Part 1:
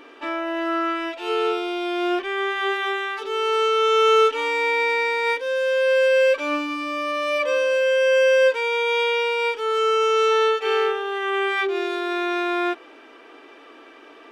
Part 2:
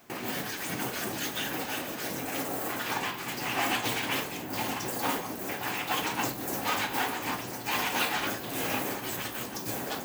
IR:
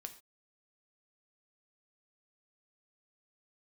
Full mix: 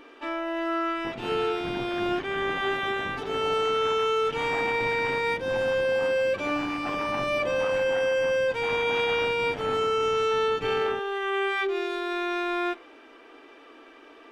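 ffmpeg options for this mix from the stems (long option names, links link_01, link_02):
-filter_complex "[0:a]volume=-6.5dB,asplit=2[link_01][link_02];[link_02]volume=-6.5dB[link_03];[1:a]lowpass=1700,tremolo=f=100:d=0.857,adelay=950,volume=0dB[link_04];[2:a]atrim=start_sample=2205[link_05];[link_03][link_05]afir=irnorm=-1:irlink=0[link_06];[link_01][link_04][link_06]amix=inputs=3:normalize=0,lowshelf=frequency=120:gain=10.5,alimiter=limit=-18dB:level=0:latency=1:release=15"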